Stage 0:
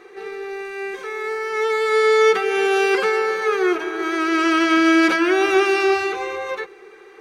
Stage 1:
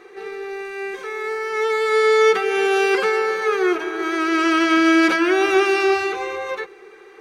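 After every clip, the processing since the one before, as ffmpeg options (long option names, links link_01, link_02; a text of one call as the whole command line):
ffmpeg -i in.wav -af anull out.wav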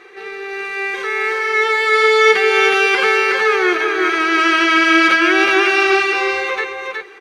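ffmpeg -i in.wav -filter_complex "[0:a]equalizer=frequency=2500:width_type=o:width=2.5:gain=9.5,dynaudnorm=framelen=210:gausssize=5:maxgain=4dB,asplit=2[link_01][link_02];[link_02]aecho=0:1:368:0.631[link_03];[link_01][link_03]amix=inputs=2:normalize=0,volume=-2dB" out.wav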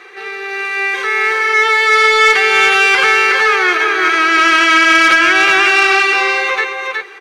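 ffmpeg -i in.wav -filter_complex "[0:a]acrossover=split=650[link_01][link_02];[link_01]alimiter=limit=-18.5dB:level=0:latency=1[link_03];[link_02]acontrast=83[link_04];[link_03][link_04]amix=inputs=2:normalize=0,volume=-1dB" out.wav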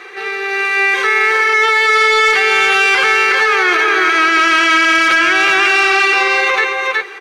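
ffmpeg -i in.wav -af "alimiter=limit=-9.5dB:level=0:latency=1:release=22,volume=4dB" out.wav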